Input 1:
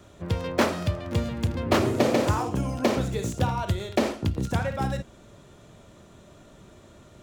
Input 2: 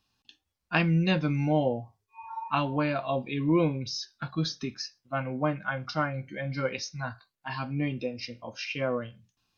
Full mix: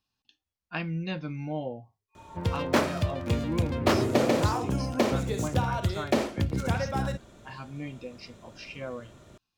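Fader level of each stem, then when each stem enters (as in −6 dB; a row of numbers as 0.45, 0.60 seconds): −1.5, −8.0 decibels; 2.15, 0.00 seconds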